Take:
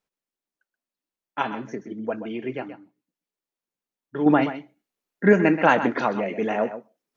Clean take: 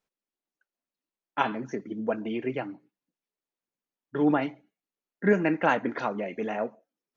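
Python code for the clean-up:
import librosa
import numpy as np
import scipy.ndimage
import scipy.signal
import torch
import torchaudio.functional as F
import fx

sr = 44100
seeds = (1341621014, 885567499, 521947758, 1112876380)

y = fx.fix_echo_inverse(x, sr, delay_ms=128, level_db=-11.5)
y = fx.fix_level(y, sr, at_s=4.26, step_db=-6.0)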